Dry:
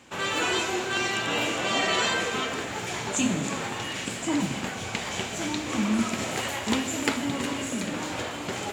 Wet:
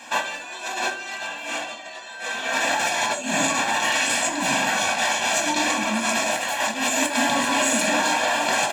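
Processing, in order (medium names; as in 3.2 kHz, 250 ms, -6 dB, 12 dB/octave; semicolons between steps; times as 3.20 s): high-pass 440 Hz 12 dB/octave; comb 1.2 ms, depth 86%; compressor with a negative ratio -32 dBFS, ratio -0.5; reverberation RT60 0.55 s, pre-delay 4 ms, DRR 1.5 dB; trim +6 dB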